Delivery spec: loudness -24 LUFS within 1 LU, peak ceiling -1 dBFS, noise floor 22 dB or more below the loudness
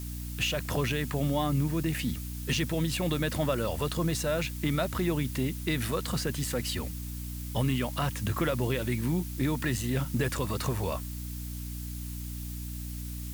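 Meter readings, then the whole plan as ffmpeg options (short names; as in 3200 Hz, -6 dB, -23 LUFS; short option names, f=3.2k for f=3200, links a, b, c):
hum 60 Hz; harmonics up to 300 Hz; hum level -35 dBFS; noise floor -38 dBFS; noise floor target -53 dBFS; loudness -31.0 LUFS; peak -14.5 dBFS; loudness target -24.0 LUFS
-> -af "bandreject=f=60:t=h:w=4,bandreject=f=120:t=h:w=4,bandreject=f=180:t=h:w=4,bandreject=f=240:t=h:w=4,bandreject=f=300:t=h:w=4"
-af "afftdn=nr=15:nf=-38"
-af "volume=7dB"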